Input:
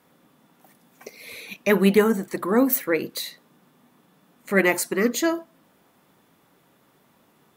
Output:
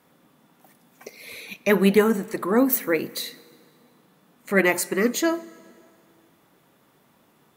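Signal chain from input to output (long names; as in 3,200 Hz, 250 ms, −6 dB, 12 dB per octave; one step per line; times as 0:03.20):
dense smooth reverb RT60 2.4 s, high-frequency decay 0.8×, DRR 19.5 dB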